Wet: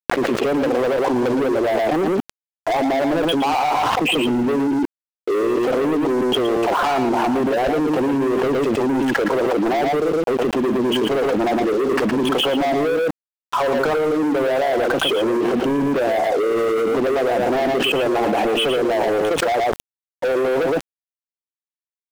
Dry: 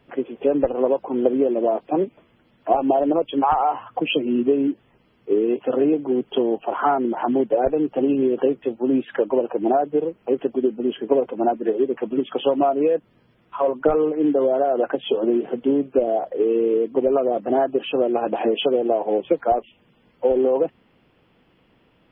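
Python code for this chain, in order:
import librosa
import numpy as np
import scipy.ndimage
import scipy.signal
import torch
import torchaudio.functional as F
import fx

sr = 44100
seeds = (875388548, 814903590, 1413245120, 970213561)

y = scipy.signal.sosfilt(scipy.signal.butter(2, 55.0, 'highpass', fs=sr, output='sos'), x)
y = fx.leveller(y, sr, passes=5)
y = np.where(np.abs(y) >= 10.0 ** (-34.5 / 20.0), y, 0.0)
y = y + 10.0 ** (-7.5 / 20.0) * np.pad(y, (int(115 * sr / 1000.0), 0))[:len(y)]
y = fx.env_flatten(y, sr, amount_pct=100)
y = F.gain(torch.from_numpy(y), -14.0).numpy()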